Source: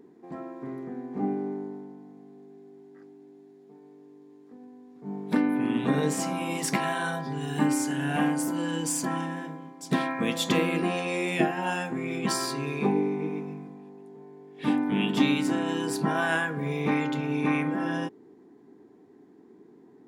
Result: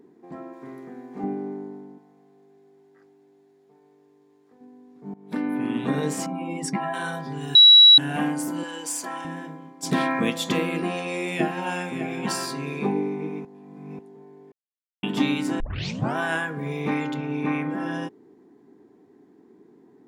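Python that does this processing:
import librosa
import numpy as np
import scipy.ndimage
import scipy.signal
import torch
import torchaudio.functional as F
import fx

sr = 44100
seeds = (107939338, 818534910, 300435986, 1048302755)

y = fx.tilt_eq(x, sr, slope=2.0, at=(0.53, 1.24))
y = fx.peak_eq(y, sr, hz=240.0, db=-11.0, octaves=1.4, at=(1.98, 4.61))
y = fx.spec_expand(y, sr, power=1.7, at=(6.26, 6.94))
y = fx.highpass(y, sr, hz=470.0, slope=12, at=(8.63, 9.25))
y = fx.env_flatten(y, sr, amount_pct=50, at=(9.82, 10.29), fade=0.02)
y = fx.echo_single(y, sr, ms=604, db=-9.0, at=(10.82, 12.81))
y = fx.lowpass(y, sr, hz=3400.0, slope=6, at=(17.14, 17.7))
y = fx.edit(y, sr, fx.fade_in_from(start_s=5.14, length_s=0.41, floor_db=-19.5),
    fx.bleep(start_s=7.55, length_s=0.43, hz=3900.0, db=-7.5),
    fx.reverse_span(start_s=13.45, length_s=0.54),
    fx.silence(start_s=14.52, length_s=0.51),
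    fx.tape_start(start_s=15.6, length_s=0.56), tone=tone)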